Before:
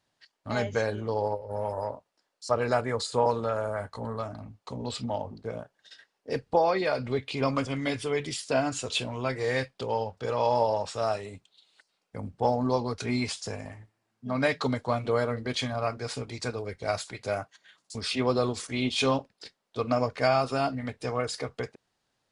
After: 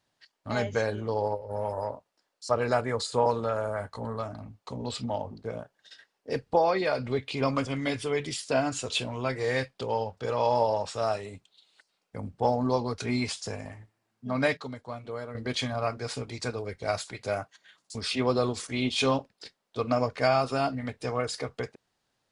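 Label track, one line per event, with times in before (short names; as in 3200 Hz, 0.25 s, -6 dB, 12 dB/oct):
14.570000	15.350000	gain -10.5 dB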